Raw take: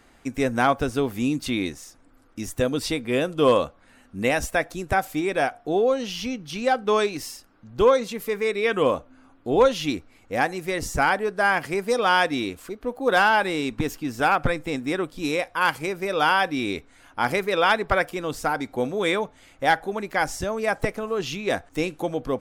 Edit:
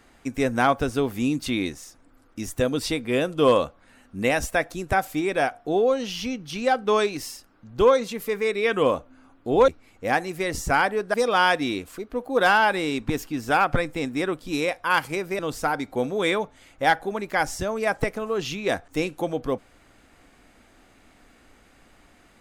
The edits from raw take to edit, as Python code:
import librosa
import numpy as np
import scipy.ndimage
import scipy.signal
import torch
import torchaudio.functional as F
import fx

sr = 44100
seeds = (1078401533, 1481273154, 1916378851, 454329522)

y = fx.edit(x, sr, fx.cut(start_s=9.68, length_s=0.28),
    fx.cut(start_s=11.42, length_s=0.43),
    fx.cut(start_s=16.1, length_s=2.1), tone=tone)